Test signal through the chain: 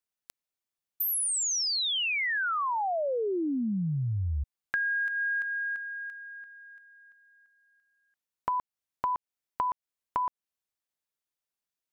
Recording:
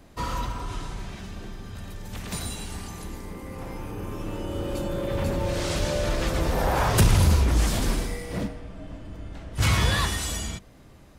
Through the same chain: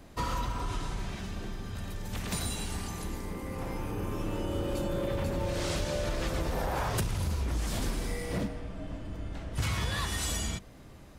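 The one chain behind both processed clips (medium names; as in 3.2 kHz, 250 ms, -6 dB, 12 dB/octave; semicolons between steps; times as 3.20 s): compression 16:1, threshold -27 dBFS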